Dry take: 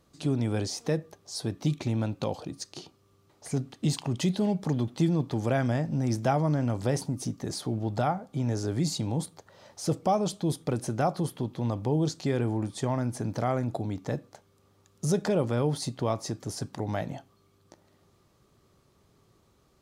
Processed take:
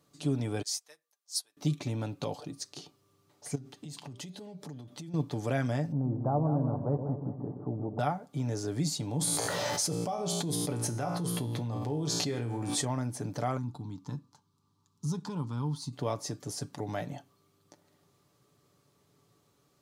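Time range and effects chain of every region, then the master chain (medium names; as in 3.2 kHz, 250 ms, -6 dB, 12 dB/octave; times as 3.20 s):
0.62–1.57 s: high-pass 1.1 kHz + treble shelf 5.6 kHz +10.5 dB + upward expansion 2.5:1, over -42 dBFS
3.55–5.14 s: de-hum 197.1 Hz, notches 34 + compression 16:1, threshold -36 dBFS
5.92–7.99 s: steep low-pass 1.1 kHz + two-band feedback delay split 620 Hz, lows 124 ms, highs 196 ms, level -7 dB
9.21–12.85 s: feedback comb 58 Hz, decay 0.53 s, mix 80% + level flattener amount 100%
13.57–15.93 s: partial rectifier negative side -3 dB + FFT filter 240 Hz 0 dB, 410 Hz -12 dB, 640 Hz -23 dB, 940 Hz +3 dB, 1.9 kHz -16 dB, 4.2 kHz -3 dB, 12 kHz -11 dB
whole clip: high-pass 92 Hz; treble shelf 4.9 kHz +5 dB; comb 6.9 ms, depth 42%; trim -4.5 dB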